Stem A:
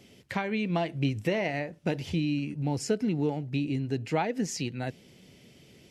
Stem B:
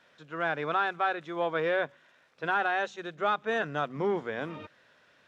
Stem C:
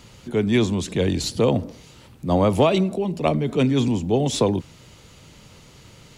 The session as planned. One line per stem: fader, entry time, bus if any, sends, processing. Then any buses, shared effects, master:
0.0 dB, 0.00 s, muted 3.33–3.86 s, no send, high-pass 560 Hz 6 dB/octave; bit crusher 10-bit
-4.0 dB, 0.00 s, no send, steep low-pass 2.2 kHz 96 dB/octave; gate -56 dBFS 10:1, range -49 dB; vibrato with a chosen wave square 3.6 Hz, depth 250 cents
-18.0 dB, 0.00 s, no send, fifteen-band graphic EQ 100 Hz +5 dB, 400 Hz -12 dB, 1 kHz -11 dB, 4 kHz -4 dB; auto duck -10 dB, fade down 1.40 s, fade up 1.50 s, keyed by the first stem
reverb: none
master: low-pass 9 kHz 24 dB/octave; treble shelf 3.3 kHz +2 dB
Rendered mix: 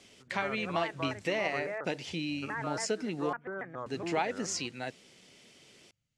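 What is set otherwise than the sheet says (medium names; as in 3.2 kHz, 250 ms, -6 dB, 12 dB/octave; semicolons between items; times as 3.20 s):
stem B -4.0 dB -> -10.0 dB; stem C -18.0 dB -> -27.5 dB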